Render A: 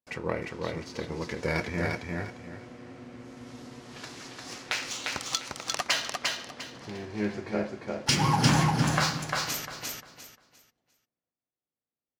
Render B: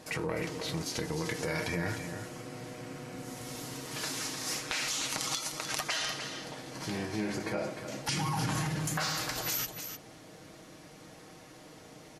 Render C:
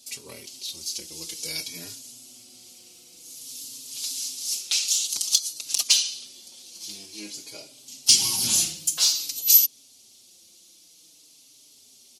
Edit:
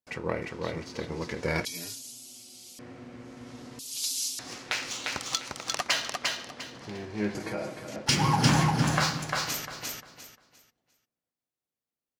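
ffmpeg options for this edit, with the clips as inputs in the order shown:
-filter_complex "[2:a]asplit=2[a][b];[0:a]asplit=4[c][d][e][f];[c]atrim=end=1.652[g];[a]atrim=start=1.648:end=2.792[h];[d]atrim=start=2.788:end=3.792[i];[b]atrim=start=3.788:end=4.392[j];[e]atrim=start=4.388:end=7.352[k];[1:a]atrim=start=7.348:end=7.962[l];[f]atrim=start=7.958[m];[g][h]acrossfade=d=0.004:c1=hsin:c2=hsin[n];[n][i]acrossfade=d=0.004:c1=hsin:c2=hsin[o];[o][j]acrossfade=d=0.004:c1=hsin:c2=hsin[p];[p][k]acrossfade=d=0.004:c1=hsin:c2=hsin[q];[q][l]acrossfade=d=0.004:c1=hsin:c2=hsin[r];[r][m]acrossfade=d=0.004:c1=hsin:c2=hsin"

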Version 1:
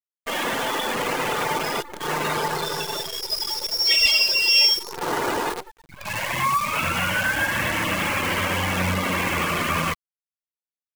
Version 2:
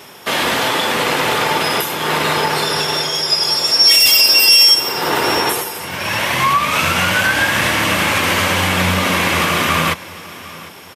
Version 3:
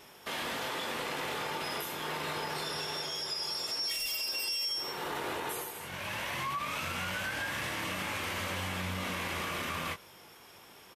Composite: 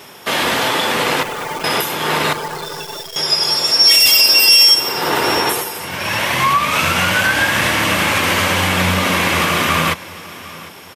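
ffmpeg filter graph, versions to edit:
-filter_complex "[0:a]asplit=2[a][b];[1:a]asplit=3[c][d][e];[c]atrim=end=1.232[f];[a]atrim=start=1.228:end=1.642[g];[d]atrim=start=1.638:end=2.332[h];[b]atrim=start=2.328:end=3.162[i];[e]atrim=start=3.158[j];[f][g]acrossfade=d=0.004:c1=hsin:c2=hsin[k];[k][h]acrossfade=d=0.004:c1=hsin:c2=hsin[l];[l][i]acrossfade=d=0.004:c1=hsin:c2=hsin[m];[m][j]acrossfade=d=0.004:c1=hsin:c2=hsin"

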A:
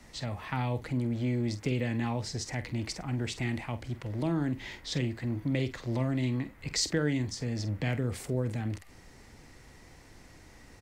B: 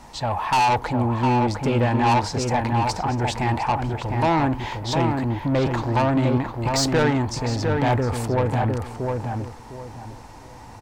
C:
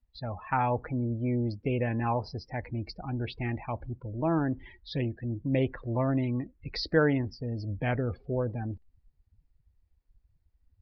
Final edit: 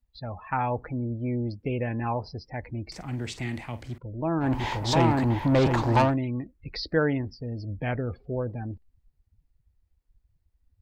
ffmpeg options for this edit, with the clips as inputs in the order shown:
-filter_complex "[2:a]asplit=3[a][b][c];[a]atrim=end=2.922[d];[0:a]atrim=start=2.918:end=3.982[e];[b]atrim=start=3.978:end=4.56[f];[1:a]atrim=start=4.4:end=6.17[g];[c]atrim=start=6.01[h];[d][e]acrossfade=d=0.004:c1=hsin:c2=hsin[i];[i][f]acrossfade=d=0.004:c1=hsin:c2=hsin[j];[j][g]acrossfade=d=0.16:c1=tri:c2=tri[k];[k][h]acrossfade=d=0.16:c1=tri:c2=tri"

